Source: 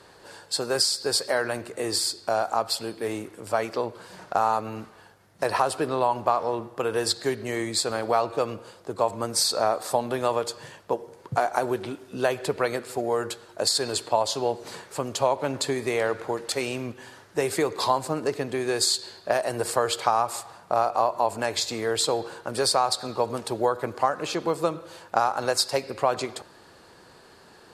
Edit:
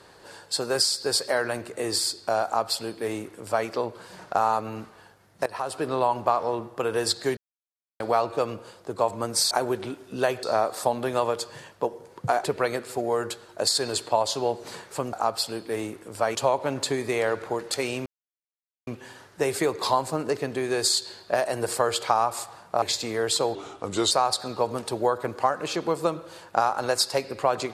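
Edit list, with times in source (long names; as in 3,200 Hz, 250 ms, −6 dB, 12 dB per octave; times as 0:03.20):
0:02.45–0:03.67: duplicate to 0:15.13
0:05.46–0:05.94: fade in, from −18 dB
0:07.37–0:08.00: silence
0:11.52–0:12.44: move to 0:09.51
0:16.84: splice in silence 0.81 s
0:20.79–0:21.50: remove
0:22.23–0:22.70: play speed 84%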